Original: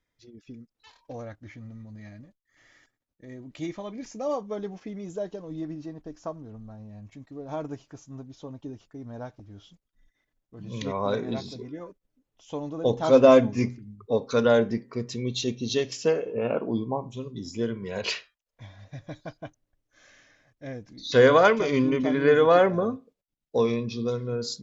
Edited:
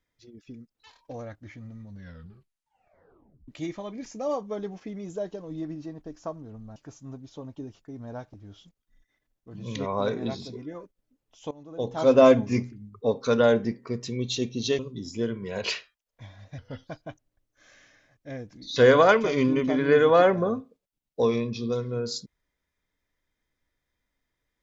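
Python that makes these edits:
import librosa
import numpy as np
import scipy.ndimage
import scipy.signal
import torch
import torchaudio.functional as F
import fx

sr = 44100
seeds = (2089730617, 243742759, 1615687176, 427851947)

y = fx.edit(x, sr, fx.tape_stop(start_s=1.83, length_s=1.65),
    fx.cut(start_s=6.76, length_s=1.06),
    fx.fade_in_from(start_s=12.57, length_s=0.77, floor_db=-18.5),
    fx.cut(start_s=15.85, length_s=1.34),
    fx.speed_span(start_s=18.98, length_s=0.25, speed=0.86), tone=tone)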